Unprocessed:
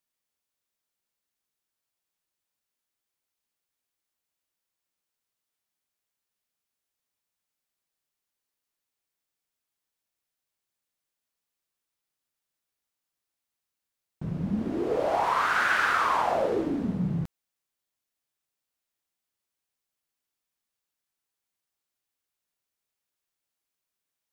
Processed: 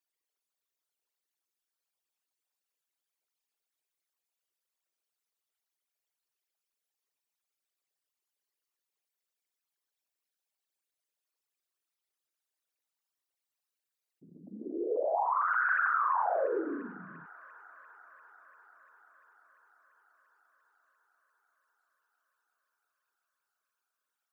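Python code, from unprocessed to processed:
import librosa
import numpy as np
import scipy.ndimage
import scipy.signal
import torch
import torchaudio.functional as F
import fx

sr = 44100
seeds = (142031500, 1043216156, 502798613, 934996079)

p1 = fx.envelope_sharpen(x, sr, power=3.0)
p2 = scipy.signal.sosfilt(scipy.signal.butter(4, 310.0, 'highpass', fs=sr, output='sos'), p1)
p3 = p2 + fx.echo_wet_highpass(p2, sr, ms=345, feedback_pct=79, hz=2400.0, wet_db=-10, dry=0)
y = p3 * librosa.db_to_amplitude(-4.0)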